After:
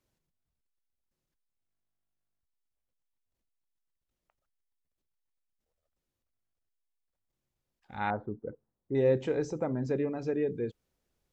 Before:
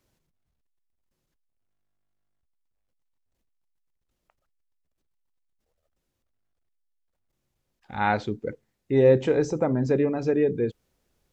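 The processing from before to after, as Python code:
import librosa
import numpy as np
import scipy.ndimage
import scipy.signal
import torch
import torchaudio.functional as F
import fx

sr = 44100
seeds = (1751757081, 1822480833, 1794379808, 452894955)

y = fx.cheby2_lowpass(x, sr, hz=2600.0, order=4, stop_db=40, at=(8.1, 8.95))
y = y * librosa.db_to_amplitude(-8.0)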